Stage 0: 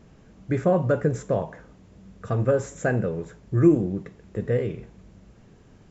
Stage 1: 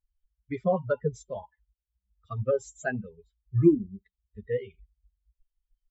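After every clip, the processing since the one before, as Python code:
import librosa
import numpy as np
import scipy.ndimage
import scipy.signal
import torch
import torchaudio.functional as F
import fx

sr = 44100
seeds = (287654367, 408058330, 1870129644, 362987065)

y = fx.bin_expand(x, sr, power=3.0)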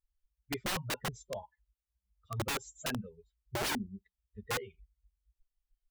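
y = (np.mod(10.0 ** (24.5 / 20.0) * x + 1.0, 2.0) - 1.0) / 10.0 ** (24.5 / 20.0)
y = F.gain(torch.from_numpy(y), -4.0).numpy()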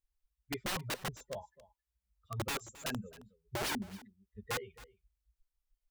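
y = x + 10.0 ** (-19.0 / 20.0) * np.pad(x, (int(268 * sr / 1000.0), 0))[:len(x)]
y = F.gain(torch.from_numpy(y), -2.0).numpy()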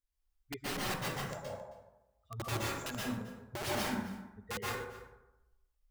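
y = fx.rev_plate(x, sr, seeds[0], rt60_s=0.96, hf_ratio=0.45, predelay_ms=110, drr_db=-5.0)
y = F.gain(torch.from_numpy(y), -4.0).numpy()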